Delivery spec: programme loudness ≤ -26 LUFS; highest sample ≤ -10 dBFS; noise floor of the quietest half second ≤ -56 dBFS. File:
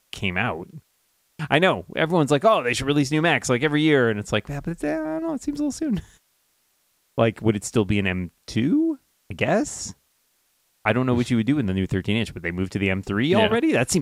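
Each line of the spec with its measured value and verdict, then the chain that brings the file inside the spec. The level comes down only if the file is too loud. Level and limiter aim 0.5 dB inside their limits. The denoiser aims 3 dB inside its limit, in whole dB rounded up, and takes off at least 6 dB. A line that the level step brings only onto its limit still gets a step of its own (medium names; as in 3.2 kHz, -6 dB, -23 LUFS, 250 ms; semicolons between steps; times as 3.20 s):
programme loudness -22.5 LUFS: fail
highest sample -4.0 dBFS: fail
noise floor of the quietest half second -67 dBFS: pass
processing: trim -4 dB; peak limiter -10.5 dBFS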